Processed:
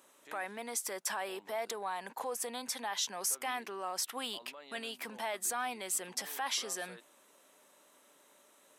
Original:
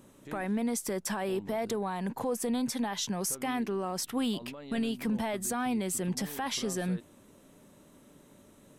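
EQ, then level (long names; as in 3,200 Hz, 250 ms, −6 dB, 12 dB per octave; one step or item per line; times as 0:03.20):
high-pass filter 710 Hz 12 dB per octave
0.0 dB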